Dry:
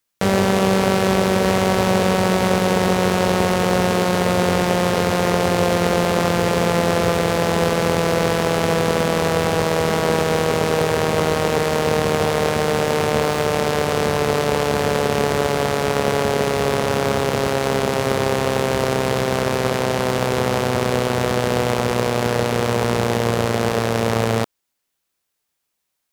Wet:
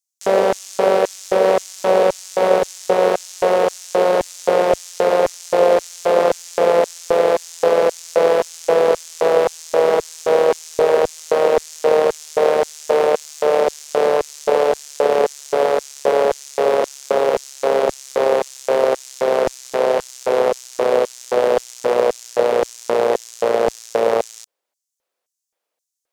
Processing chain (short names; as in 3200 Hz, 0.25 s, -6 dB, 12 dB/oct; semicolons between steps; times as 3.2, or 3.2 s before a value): LFO high-pass square 1.9 Hz 520–6500 Hz; tilt -2 dB/oct; gain -1 dB